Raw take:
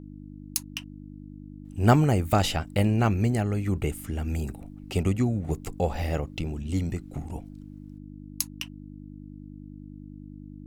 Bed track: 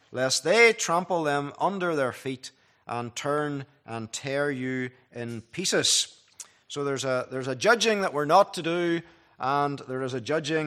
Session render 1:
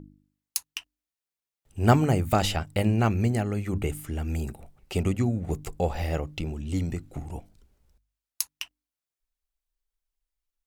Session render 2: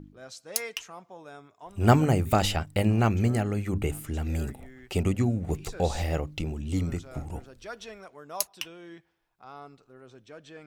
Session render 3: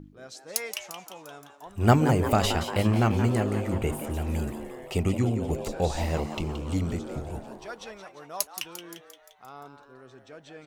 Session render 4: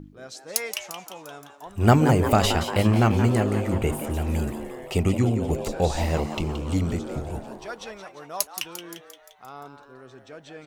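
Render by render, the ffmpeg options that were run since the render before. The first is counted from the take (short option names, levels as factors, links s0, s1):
-af "bandreject=f=50:t=h:w=4,bandreject=f=100:t=h:w=4,bandreject=f=150:t=h:w=4,bandreject=f=200:t=h:w=4,bandreject=f=250:t=h:w=4,bandreject=f=300:t=h:w=4"
-filter_complex "[1:a]volume=0.1[s0];[0:a][s0]amix=inputs=2:normalize=0"
-filter_complex "[0:a]asplit=8[s0][s1][s2][s3][s4][s5][s6][s7];[s1]adelay=174,afreqshift=140,volume=0.316[s8];[s2]adelay=348,afreqshift=280,volume=0.184[s9];[s3]adelay=522,afreqshift=420,volume=0.106[s10];[s4]adelay=696,afreqshift=560,volume=0.0617[s11];[s5]adelay=870,afreqshift=700,volume=0.0359[s12];[s6]adelay=1044,afreqshift=840,volume=0.0207[s13];[s7]adelay=1218,afreqshift=980,volume=0.012[s14];[s0][s8][s9][s10][s11][s12][s13][s14]amix=inputs=8:normalize=0"
-af "volume=1.5,alimiter=limit=0.708:level=0:latency=1"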